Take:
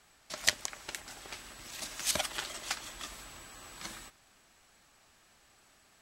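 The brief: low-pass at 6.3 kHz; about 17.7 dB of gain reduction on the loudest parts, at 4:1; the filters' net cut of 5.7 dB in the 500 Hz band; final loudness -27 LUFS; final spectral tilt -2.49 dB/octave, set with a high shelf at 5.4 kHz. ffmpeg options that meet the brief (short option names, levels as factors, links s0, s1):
-af "lowpass=6300,equalizer=f=500:t=o:g=-8,highshelf=f=5400:g=5,acompressor=threshold=0.00708:ratio=4,volume=8.91"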